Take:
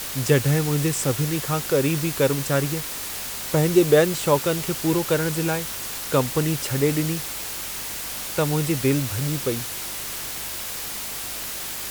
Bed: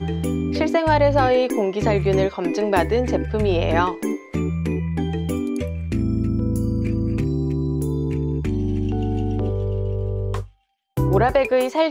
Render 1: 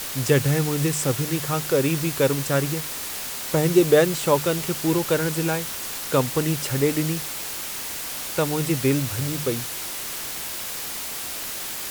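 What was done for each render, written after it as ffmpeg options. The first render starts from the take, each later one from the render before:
ffmpeg -i in.wav -af "bandreject=frequency=50:width_type=h:width=4,bandreject=frequency=100:width_type=h:width=4,bandreject=frequency=150:width_type=h:width=4,bandreject=frequency=200:width_type=h:width=4" out.wav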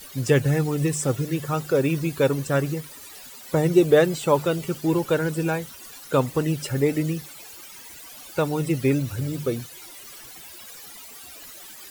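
ffmpeg -i in.wav -af "afftdn=noise_reduction=16:noise_floor=-32" out.wav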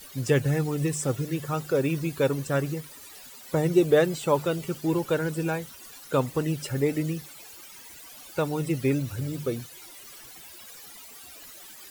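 ffmpeg -i in.wav -af "volume=-3.5dB" out.wav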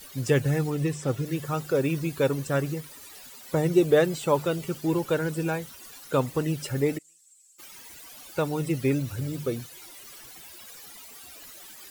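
ffmpeg -i in.wav -filter_complex "[0:a]asettb=1/sr,asplit=3[link_01][link_02][link_03];[link_01]atrim=end=0.704[link_04];[link_02]atrim=start=0.7:end=1.26,asetpts=PTS-STARTPTS,afade=type=in:duration=0.004:curve=qsin,afade=type=out:start_time=0.556:duration=0.004:curve=qsin,acrossover=split=5200[link_05][link_06];[link_06]acompressor=threshold=-46dB:ratio=4:attack=1:release=60[link_07];[link_05][link_07]amix=inputs=2:normalize=0[link_08];[link_03]atrim=start=1.256[link_09];[link_04][link_08]acrossfade=duration=0.004:curve1=hsin:curve2=qsin[link_10];[link_10][link_09]acrossfade=duration=0.004:curve1=qsin:curve2=hsin,asplit=3[link_11][link_12][link_13];[link_11]afade=type=out:start_time=6.97:duration=0.02[link_14];[link_12]bandpass=frequency=7700:width_type=q:width=9,afade=type=in:start_time=6.97:duration=0.02,afade=type=out:start_time=7.58:duration=0.02[link_15];[link_13]afade=type=in:start_time=7.58:duration=0.02[link_16];[link_14][link_15][link_16]amix=inputs=3:normalize=0" out.wav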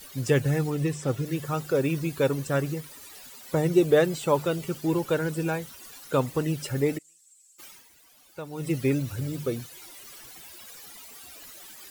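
ffmpeg -i in.wav -filter_complex "[0:a]asplit=3[link_01][link_02][link_03];[link_01]atrim=end=7.93,asetpts=PTS-STARTPTS,afade=type=out:start_time=7.68:duration=0.25:curve=qua:silence=0.266073[link_04];[link_02]atrim=start=7.93:end=8.44,asetpts=PTS-STARTPTS,volume=-11.5dB[link_05];[link_03]atrim=start=8.44,asetpts=PTS-STARTPTS,afade=type=in:duration=0.25:curve=qua:silence=0.266073[link_06];[link_04][link_05][link_06]concat=n=3:v=0:a=1" out.wav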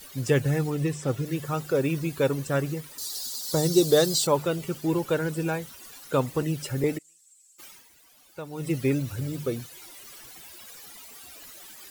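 ffmpeg -i in.wav -filter_complex "[0:a]asettb=1/sr,asplit=3[link_01][link_02][link_03];[link_01]atrim=end=2.984[link_04];[link_02]atrim=start=2.98:end=4.27,asetpts=PTS-STARTPTS,afade=type=in:duration=0.004:curve=qsin,afade=type=out:start_time=1.286:duration=0.004:curve=qsin,highshelf=frequency=3300:width_type=q:width=3:gain=10.5[link_05];[link_03]atrim=start=4.266[link_06];[link_04][link_05]acrossfade=duration=0.004:curve1=hsin:curve2=qsin[link_07];[link_07][link_06]acrossfade=duration=0.004:curve1=qsin:curve2=hsin,asettb=1/sr,asplit=3[link_08][link_09][link_10];[link_08]atrim=end=6.424[link_11];[link_09]atrim=start=6.42:end=6.84,asetpts=PTS-STARTPTS,afade=type=in:duration=0.004:curve=qsin,afade=type=out:start_time=0.416:duration=0.004:curve=qsin,acrossover=split=380|3000[link_12][link_13][link_14];[link_13]acompressor=threshold=-36dB:ratio=6:attack=3.2:release=140:knee=2.83:detection=peak[link_15];[link_12][link_15][link_14]amix=inputs=3:normalize=0[link_16];[link_10]atrim=start=6.836[link_17];[link_11][link_16]acrossfade=duration=0.004:curve1=hsin:curve2=qsin[link_18];[link_18][link_17]acrossfade=duration=0.004:curve1=qsin:curve2=hsin" out.wav

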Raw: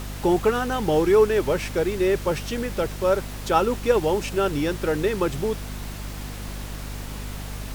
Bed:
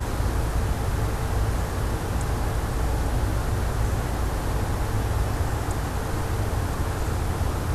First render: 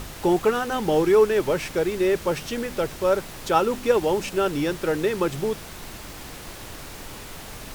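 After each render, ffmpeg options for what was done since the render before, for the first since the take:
ffmpeg -i in.wav -af "bandreject=frequency=50:width_type=h:width=4,bandreject=frequency=100:width_type=h:width=4,bandreject=frequency=150:width_type=h:width=4,bandreject=frequency=200:width_type=h:width=4,bandreject=frequency=250:width_type=h:width=4" out.wav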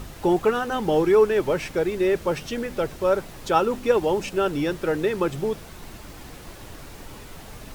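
ffmpeg -i in.wav -af "afftdn=noise_reduction=6:noise_floor=-39" out.wav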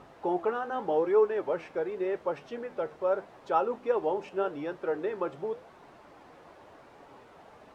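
ffmpeg -i in.wav -af "flanger=delay=7:depth=6.1:regen=76:speed=0.85:shape=sinusoidal,bandpass=frequency=740:width_type=q:width=1:csg=0" out.wav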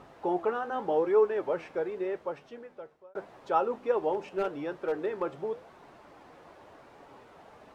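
ffmpeg -i in.wav -filter_complex "[0:a]asplit=3[link_01][link_02][link_03];[link_01]afade=type=out:start_time=4.12:duration=0.02[link_04];[link_02]asoftclip=type=hard:threshold=-23dB,afade=type=in:start_time=4.12:duration=0.02,afade=type=out:start_time=5.21:duration=0.02[link_05];[link_03]afade=type=in:start_time=5.21:duration=0.02[link_06];[link_04][link_05][link_06]amix=inputs=3:normalize=0,asplit=2[link_07][link_08];[link_07]atrim=end=3.15,asetpts=PTS-STARTPTS,afade=type=out:start_time=1.81:duration=1.34[link_09];[link_08]atrim=start=3.15,asetpts=PTS-STARTPTS,afade=type=in:duration=0.004:curve=hsin[link_10];[link_09][link_10]concat=n=2:v=0:a=1" out.wav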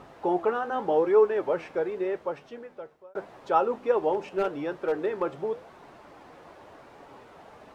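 ffmpeg -i in.wav -af "volume=3.5dB" out.wav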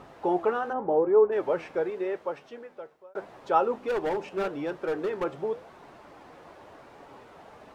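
ffmpeg -i in.wav -filter_complex "[0:a]asplit=3[link_01][link_02][link_03];[link_01]afade=type=out:start_time=0.72:duration=0.02[link_04];[link_02]lowpass=1000,afade=type=in:start_time=0.72:duration=0.02,afade=type=out:start_time=1.31:duration=0.02[link_05];[link_03]afade=type=in:start_time=1.31:duration=0.02[link_06];[link_04][link_05][link_06]amix=inputs=3:normalize=0,asettb=1/sr,asplit=3[link_07][link_08][link_09];[link_07]atrim=end=1.904[link_10];[link_08]atrim=start=1.9:end=3.22,asetpts=PTS-STARTPTS,afade=type=in:duration=0.004:curve=qsin,afade=type=out:start_time=1.316:duration=0.004:curve=qsin,lowshelf=frequency=180:gain=-8[link_11];[link_09]atrim=start=3.216[link_12];[link_10][link_11]acrossfade=duration=0.004:curve1=hsin:curve2=qsin[link_13];[link_13][link_12]acrossfade=duration=0.004:curve1=qsin:curve2=hsin,asettb=1/sr,asplit=3[link_14][link_15][link_16];[link_14]atrim=end=3.804[link_17];[link_15]atrim=start=3.8:end=5.24,asetpts=PTS-STARTPTS,afade=type=in:duration=0.004:curve=qsin,afade=type=out:start_time=1.436:duration=0.004:curve=qsin,volume=24.5dB,asoftclip=hard,volume=-24.5dB[link_18];[link_16]atrim=start=5.236[link_19];[link_17][link_18]acrossfade=duration=0.004:curve1=hsin:curve2=qsin[link_20];[link_20][link_19]acrossfade=duration=0.004:curve1=qsin:curve2=hsin" out.wav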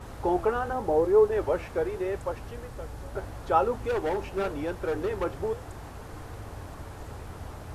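ffmpeg -i in.wav -i bed.wav -filter_complex "[1:a]volume=-15.5dB[link_01];[0:a][link_01]amix=inputs=2:normalize=0" out.wav

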